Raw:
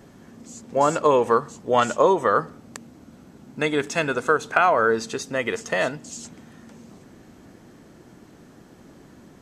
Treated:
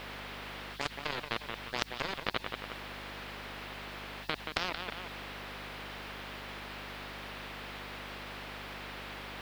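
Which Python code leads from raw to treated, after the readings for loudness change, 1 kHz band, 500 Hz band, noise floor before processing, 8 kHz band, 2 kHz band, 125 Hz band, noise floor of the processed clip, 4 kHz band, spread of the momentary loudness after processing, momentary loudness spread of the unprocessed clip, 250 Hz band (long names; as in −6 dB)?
−18.0 dB, −17.5 dB, −22.5 dB, −50 dBFS, −16.0 dB, −11.0 dB, −10.5 dB, −47 dBFS, −2.0 dB, 7 LU, 10 LU, −16.5 dB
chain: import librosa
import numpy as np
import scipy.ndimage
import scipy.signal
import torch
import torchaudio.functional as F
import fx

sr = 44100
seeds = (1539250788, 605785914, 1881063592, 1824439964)

y = fx.spec_quant(x, sr, step_db=15)
y = fx.highpass(y, sr, hz=190.0, slope=6)
y = fx.peak_eq(y, sr, hz=4200.0, db=5.0, octaves=0.65)
y = fx.level_steps(y, sr, step_db=19)
y = fx.power_curve(y, sr, exponent=3.0)
y = fx.add_hum(y, sr, base_hz=50, snr_db=21)
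y = fx.quant_dither(y, sr, seeds[0], bits=10, dither='triangular')
y = fx.air_absorb(y, sr, metres=400.0)
y = fx.echo_feedback(y, sr, ms=177, feedback_pct=28, wet_db=-20)
y = fx.spectral_comp(y, sr, ratio=4.0)
y = y * librosa.db_to_amplitude(4.5)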